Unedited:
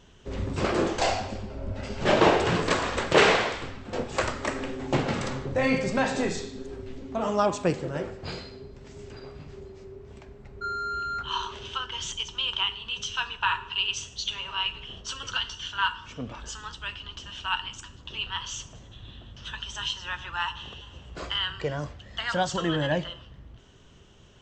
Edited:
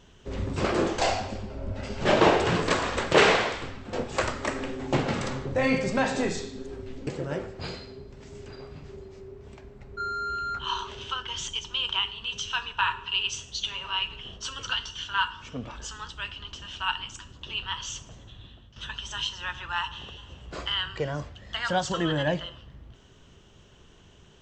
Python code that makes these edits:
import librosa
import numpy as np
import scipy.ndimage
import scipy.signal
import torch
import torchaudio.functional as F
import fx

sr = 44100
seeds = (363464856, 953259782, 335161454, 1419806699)

y = fx.edit(x, sr, fx.cut(start_s=7.07, length_s=0.64),
    fx.fade_out_to(start_s=18.89, length_s=0.51, floor_db=-11.0), tone=tone)